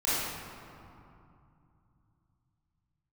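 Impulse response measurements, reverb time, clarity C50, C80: 2.7 s, -5.0 dB, -1.5 dB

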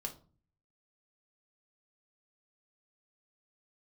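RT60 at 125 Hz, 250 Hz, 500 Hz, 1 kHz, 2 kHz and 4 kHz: 0.80 s, 0.60 s, 0.40 s, 0.40 s, 0.25 s, 0.25 s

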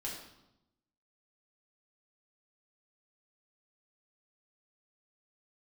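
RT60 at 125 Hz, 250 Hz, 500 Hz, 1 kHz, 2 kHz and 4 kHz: 1.2 s, 1.1 s, 0.90 s, 0.85 s, 0.70 s, 0.75 s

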